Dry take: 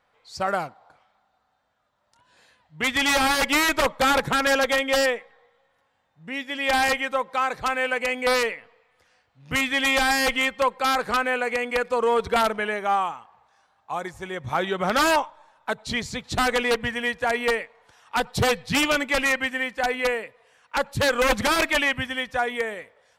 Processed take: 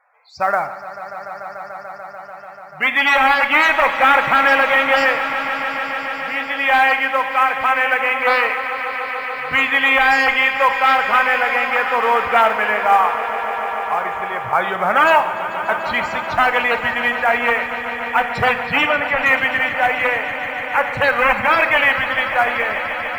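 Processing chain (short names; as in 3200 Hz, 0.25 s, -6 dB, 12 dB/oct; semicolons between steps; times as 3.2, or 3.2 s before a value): band shelf 1300 Hz +10.5 dB 2.5 oct; loudest bins only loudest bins 64; in parallel at -11 dB: short-mantissa float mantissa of 2-bit; 18.86–19.26 on the sum: air absorption 360 m; on a send: swelling echo 0.146 s, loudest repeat 5, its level -15 dB; on the sum: Schroeder reverb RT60 0.92 s, combs from 26 ms, DRR 10 dB; gain -4.5 dB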